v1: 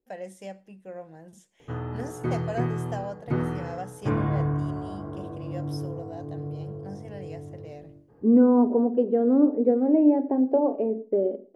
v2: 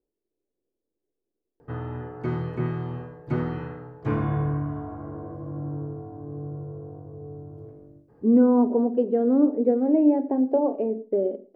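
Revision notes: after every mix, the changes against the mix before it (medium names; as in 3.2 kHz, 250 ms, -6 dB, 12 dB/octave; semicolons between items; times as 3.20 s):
first voice: muted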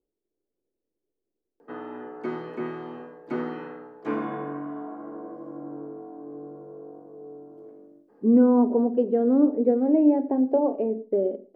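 background: add steep high-pass 210 Hz 36 dB/octave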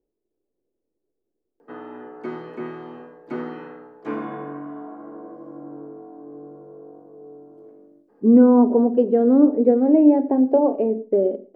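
speech +5.0 dB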